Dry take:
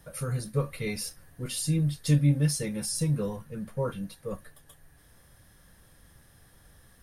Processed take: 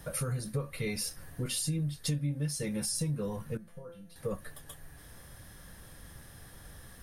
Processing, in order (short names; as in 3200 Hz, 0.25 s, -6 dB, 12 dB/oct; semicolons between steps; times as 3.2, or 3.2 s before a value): compressor 5:1, threshold -38 dBFS, peak gain reduction 18.5 dB; 3.57–4.16 resonator 170 Hz, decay 0.43 s, harmonics all, mix 90%; gain +6.5 dB